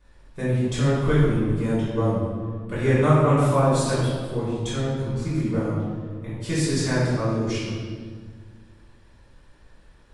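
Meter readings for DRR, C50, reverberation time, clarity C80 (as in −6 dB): −10.5 dB, −2.0 dB, 1.6 s, 0.5 dB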